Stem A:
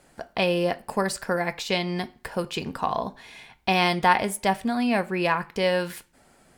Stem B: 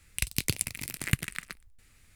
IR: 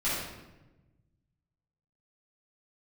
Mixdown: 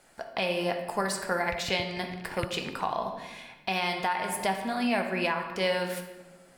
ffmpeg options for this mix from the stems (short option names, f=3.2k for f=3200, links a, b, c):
-filter_complex "[0:a]lowshelf=f=320:g=-9.5,volume=-2dB,asplit=2[a][b];[b]volume=-12.5dB[c];[1:a]lowpass=f=4k:w=0.5412,lowpass=f=4k:w=1.3066,adelay=1300,volume=-7.5dB[d];[2:a]atrim=start_sample=2205[e];[c][e]afir=irnorm=-1:irlink=0[f];[a][d][f]amix=inputs=3:normalize=0,alimiter=limit=-16dB:level=0:latency=1:release=349"